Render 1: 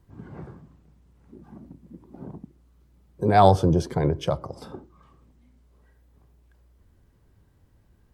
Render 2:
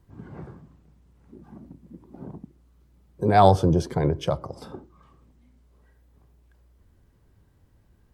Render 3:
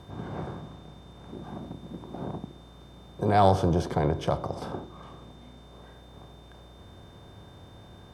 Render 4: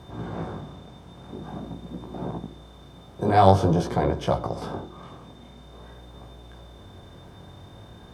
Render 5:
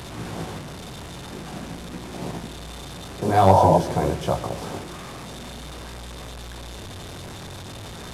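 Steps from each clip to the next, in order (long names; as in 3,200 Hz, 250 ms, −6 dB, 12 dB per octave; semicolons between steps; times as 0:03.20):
no processing that can be heard
compressor on every frequency bin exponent 0.6; steady tone 3,600 Hz −53 dBFS; level −6 dB
chorus effect 0.48 Hz, delay 16 ms, depth 6.9 ms; level +6 dB
linear delta modulator 64 kbit/s, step −31 dBFS; sound drawn into the spectrogram noise, 0:03.49–0:03.78, 500–1,000 Hz −16 dBFS; on a send at −18 dB: convolution reverb RT60 0.50 s, pre-delay 147 ms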